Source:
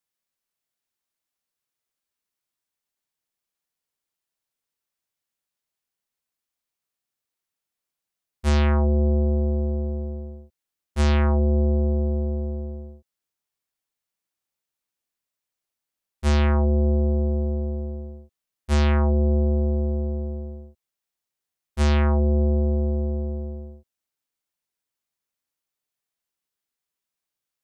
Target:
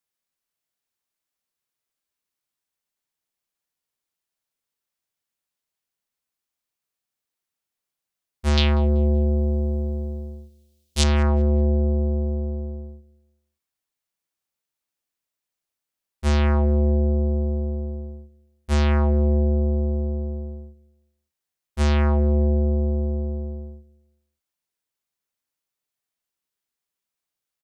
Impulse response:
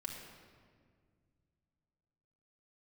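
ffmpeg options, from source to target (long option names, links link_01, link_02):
-filter_complex "[0:a]asettb=1/sr,asplit=3[link_01][link_02][link_03];[link_01]atrim=end=8.574[link_04];[link_02]atrim=start=8.57:end=11.04,asetpts=PTS-STARTPTS,afade=type=in:duration=0.004:curve=qsin,afade=type=out:start_time=2.466:duration=0.004:curve=qsin,highshelf=frequency=2400:width_type=q:width=1.5:gain=13[link_05];[link_03]atrim=start=11.036[link_06];[link_04][link_05]acrossfade=duration=0.004:curve1=hsin:curve2=qsin[link_07];[link_07][link_06]acrossfade=duration=0.004:curve1=qsin:curve2=hsin,asplit=2[link_08][link_09];[link_09]adelay=191,lowpass=frequency=3900:poles=1,volume=-23dB,asplit=2[link_10][link_11];[link_11]adelay=191,lowpass=frequency=3900:poles=1,volume=0.43,asplit=2[link_12][link_13];[link_13]adelay=191,lowpass=frequency=3900:poles=1,volume=0.43[link_14];[link_08][link_10][link_12][link_14]amix=inputs=4:normalize=0"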